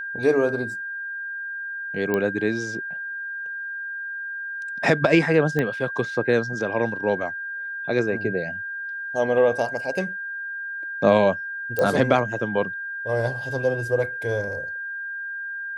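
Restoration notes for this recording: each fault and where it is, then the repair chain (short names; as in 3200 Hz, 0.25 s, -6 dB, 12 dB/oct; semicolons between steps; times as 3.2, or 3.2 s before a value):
tone 1600 Hz -29 dBFS
2.14 pop -11 dBFS
5.59 pop -12 dBFS
11.79 pop -11 dBFS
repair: de-click; notch 1600 Hz, Q 30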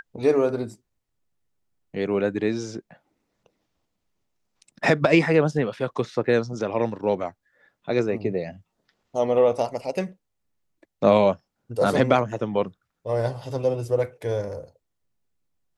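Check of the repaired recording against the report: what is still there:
5.59 pop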